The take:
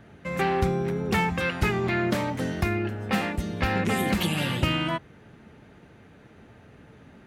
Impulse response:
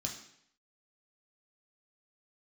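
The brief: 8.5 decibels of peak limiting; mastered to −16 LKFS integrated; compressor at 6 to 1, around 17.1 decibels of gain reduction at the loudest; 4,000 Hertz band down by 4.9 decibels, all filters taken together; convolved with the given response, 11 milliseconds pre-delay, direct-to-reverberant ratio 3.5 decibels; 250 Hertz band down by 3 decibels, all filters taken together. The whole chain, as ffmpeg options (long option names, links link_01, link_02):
-filter_complex "[0:a]equalizer=frequency=250:width_type=o:gain=-4.5,equalizer=frequency=4000:width_type=o:gain=-7.5,acompressor=threshold=-39dB:ratio=6,alimiter=level_in=10dB:limit=-24dB:level=0:latency=1,volume=-10dB,asplit=2[link_01][link_02];[1:a]atrim=start_sample=2205,adelay=11[link_03];[link_02][link_03]afir=irnorm=-1:irlink=0,volume=-3.5dB[link_04];[link_01][link_04]amix=inputs=2:normalize=0,volume=25dB"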